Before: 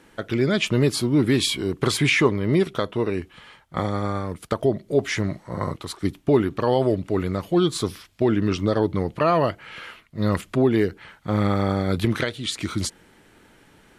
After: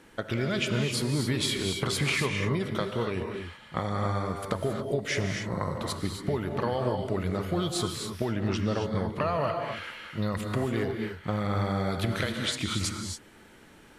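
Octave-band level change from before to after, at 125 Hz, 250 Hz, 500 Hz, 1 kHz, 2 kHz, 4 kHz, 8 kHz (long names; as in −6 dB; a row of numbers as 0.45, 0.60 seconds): −5.0, −8.5, −8.0, −5.0, −4.5, −3.5, −3.0 decibels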